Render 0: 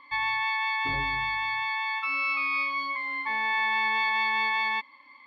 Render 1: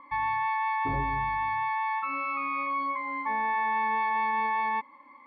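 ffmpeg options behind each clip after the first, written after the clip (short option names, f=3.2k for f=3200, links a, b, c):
-filter_complex "[0:a]lowpass=1k,asplit=2[a][b];[b]alimiter=level_in=6.5dB:limit=-24dB:level=0:latency=1,volume=-6.5dB,volume=2.5dB[c];[a][c]amix=inputs=2:normalize=0"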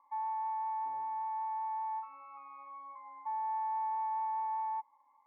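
-af "bandpass=f=850:t=q:w=8.6:csg=0,volume=-4.5dB"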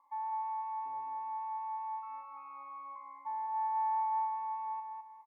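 -af "aecho=1:1:206|412|618|824:0.562|0.186|0.0612|0.0202,volume=-1.5dB"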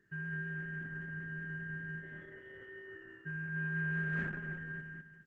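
-af "aeval=exprs='val(0)*sin(2*PI*720*n/s)':c=same" -ar 48000 -c:a libopus -b:a 10k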